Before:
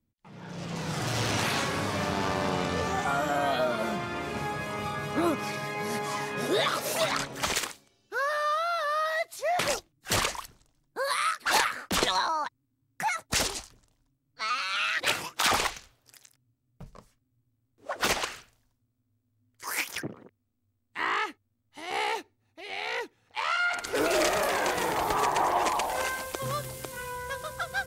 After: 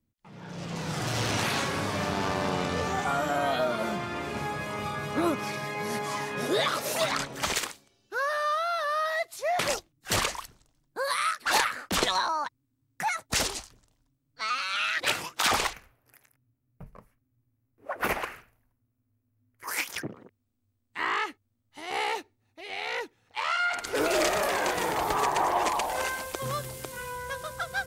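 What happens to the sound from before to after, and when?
15.73–19.68 s: high-order bell 5.2 kHz -14 dB

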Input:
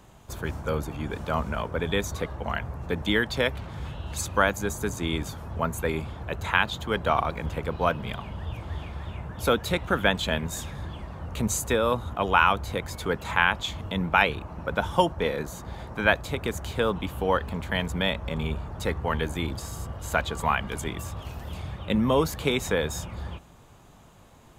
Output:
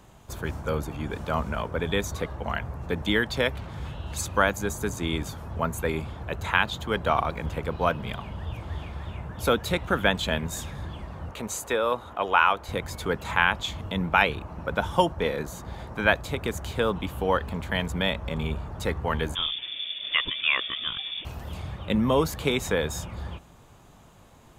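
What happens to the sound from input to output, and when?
11.31–12.69 s: tone controls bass -14 dB, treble -5 dB
19.35–21.25 s: frequency inversion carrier 3.5 kHz

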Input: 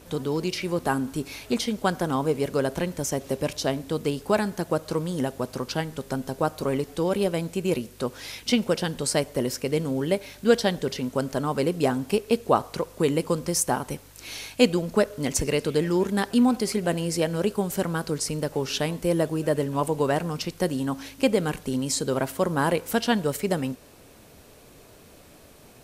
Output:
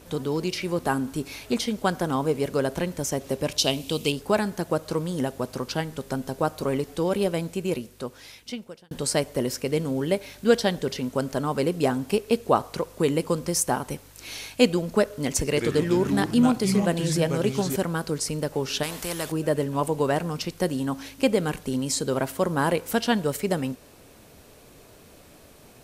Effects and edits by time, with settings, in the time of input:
3.58–4.12 s: resonant high shelf 2.2 kHz +7 dB, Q 3
7.37–8.91 s: fade out
15.48–17.76 s: ever faster or slower copies 81 ms, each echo -4 st, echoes 2, each echo -6 dB
18.83–19.32 s: spectrum-flattening compressor 2:1

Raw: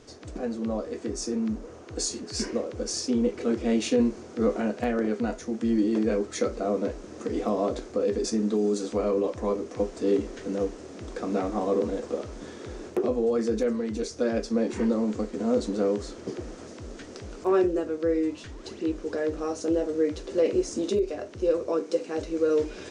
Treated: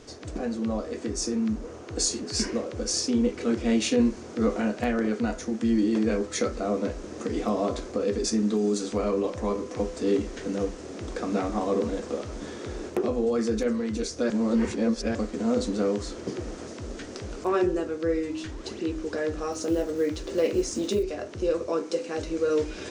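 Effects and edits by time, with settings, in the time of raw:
14.30–15.15 s: reverse
19.52–21.04 s: block-companded coder 7-bit
whole clip: de-hum 63.25 Hz, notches 28; dynamic bell 460 Hz, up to -5 dB, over -35 dBFS, Q 0.71; trim +4 dB

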